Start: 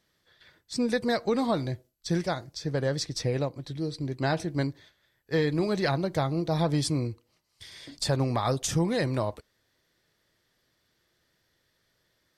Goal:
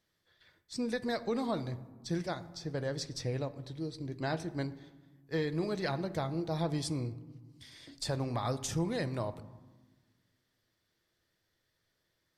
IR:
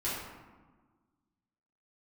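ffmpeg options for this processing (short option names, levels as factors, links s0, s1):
-filter_complex "[0:a]asplit=2[s0][s1];[1:a]atrim=start_sample=2205,lowshelf=f=180:g=8[s2];[s1][s2]afir=irnorm=-1:irlink=0,volume=0.112[s3];[s0][s3]amix=inputs=2:normalize=0,volume=0.398"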